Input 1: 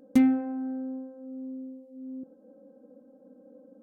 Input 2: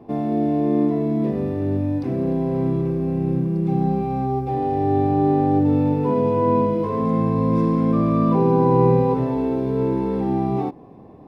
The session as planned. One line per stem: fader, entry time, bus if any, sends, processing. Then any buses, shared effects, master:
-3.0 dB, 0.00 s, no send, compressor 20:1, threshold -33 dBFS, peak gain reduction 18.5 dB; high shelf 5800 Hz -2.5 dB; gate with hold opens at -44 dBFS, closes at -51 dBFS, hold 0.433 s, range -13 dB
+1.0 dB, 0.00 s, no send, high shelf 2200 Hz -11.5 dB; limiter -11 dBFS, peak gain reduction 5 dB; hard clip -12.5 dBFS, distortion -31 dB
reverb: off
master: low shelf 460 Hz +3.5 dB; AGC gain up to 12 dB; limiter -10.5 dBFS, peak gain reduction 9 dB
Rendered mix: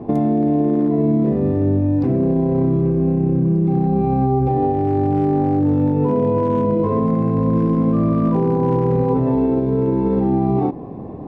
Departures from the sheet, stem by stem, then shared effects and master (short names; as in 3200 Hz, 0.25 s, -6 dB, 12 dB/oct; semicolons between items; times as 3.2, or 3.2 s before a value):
stem 1 -3.0 dB -> +4.5 dB; stem 2 +1.0 dB -> +11.0 dB